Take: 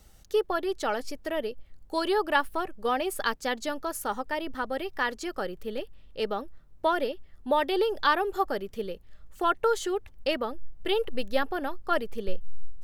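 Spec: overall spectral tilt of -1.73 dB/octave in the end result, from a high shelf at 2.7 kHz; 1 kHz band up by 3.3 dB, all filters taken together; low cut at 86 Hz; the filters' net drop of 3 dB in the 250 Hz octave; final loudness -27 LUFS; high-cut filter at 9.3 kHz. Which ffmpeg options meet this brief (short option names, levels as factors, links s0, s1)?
-af "highpass=86,lowpass=9300,equalizer=f=250:t=o:g=-5,equalizer=f=1000:t=o:g=3.5,highshelf=f=2700:g=5.5,volume=1.12"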